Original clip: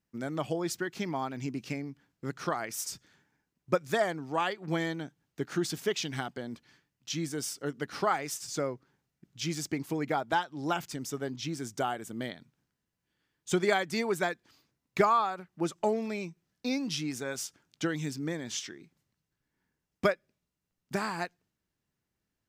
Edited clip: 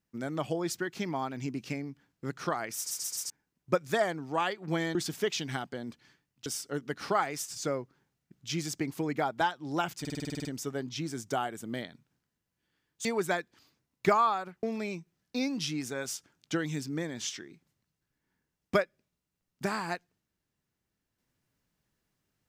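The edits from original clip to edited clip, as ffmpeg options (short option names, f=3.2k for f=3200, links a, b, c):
-filter_complex "[0:a]asplit=18[a][b][c][d][e][f][g][h][i][j][k][l][m][n][o][p][q][r];[a]atrim=end=2.912[s];[b]atrim=start=2.778:end=2.912[t];[c]atrim=start=2.778:end=2.912[u];[d]atrim=start=2.778:end=2.912[v];[e]atrim=start=3.298:end=4.952[w];[f]atrim=start=5.588:end=7.102[x];[g]atrim=start=7.378:end=10.972[y];[h]atrim=start=10.918:end=10.972[z];[i]atrim=start=10.918:end=10.972[aa];[j]atrim=start=10.918:end=10.972[ab];[k]atrim=start=10.918:end=10.972[ac];[l]atrim=start=10.918:end=10.972[ad];[m]atrim=start=10.918:end=10.972[ae];[n]atrim=start=10.918:end=10.972[af];[o]atrim=start=10.918:end=10.972[ag];[p]atrim=start=10.918:end=13.522[ah];[q]atrim=start=13.968:end=15.552[ai];[r]atrim=start=15.928[aj];[s][t]acrossfade=d=0.004:c1=hsin:c2=hsin[ak];[ak][u]acrossfade=d=0.004:c1=hsin:c2=hsin[al];[al][v]acrossfade=d=0.004:c1=hsin:c2=hsin[am];[am][w]acrossfade=d=0.004:c1=hsin:c2=hsin[an];[an][x]acrossfade=d=0.004:c1=hsin:c2=hsin[ao];[ao][y]acrossfade=d=0.004:c1=hsin:c2=hsin[ap];[ap][z]acrossfade=d=0.004:c1=hsin:c2=hsin[aq];[aq][aa]acrossfade=d=0.004:c1=hsin:c2=hsin[ar];[ar][ab]acrossfade=d=0.004:c1=hsin:c2=hsin[as];[as][ac]acrossfade=d=0.004:c1=hsin:c2=hsin[at];[at][ad]acrossfade=d=0.004:c1=hsin:c2=hsin[au];[au][ae]acrossfade=d=0.004:c1=hsin:c2=hsin[av];[av][af]acrossfade=d=0.004:c1=hsin:c2=hsin[aw];[aw][ag]acrossfade=d=0.004:c1=hsin:c2=hsin[ax];[ax][ah]acrossfade=d=0.004:c1=hsin:c2=hsin[ay];[ay][ai]acrossfade=d=0.004:c1=hsin:c2=hsin[az];[az][aj]acrossfade=d=0.004:c1=hsin:c2=hsin"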